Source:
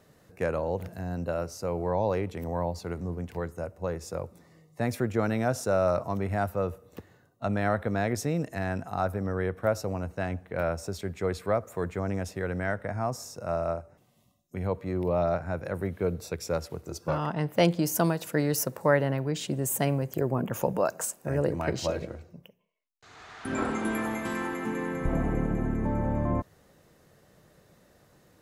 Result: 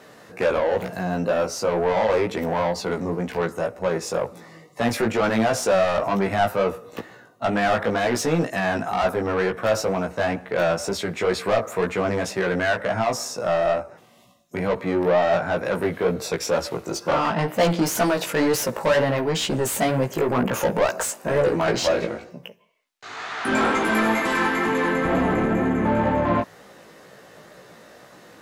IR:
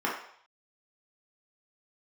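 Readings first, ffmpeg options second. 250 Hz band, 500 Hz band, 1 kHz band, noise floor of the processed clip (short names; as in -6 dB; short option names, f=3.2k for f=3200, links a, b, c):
+6.0 dB, +8.0 dB, +9.5 dB, -49 dBFS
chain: -filter_complex "[0:a]equalizer=f=220:w=1.5:g=3,asplit=2[a][b];[b]highpass=f=720:p=1,volume=27dB,asoftclip=type=tanh:threshold=-8dB[c];[a][c]amix=inputs=2:normalize=0,lowpass=f=3.7k:p=1,volume=-6dB,flanger=delay=15.5:depth=3.1:speed=2.1"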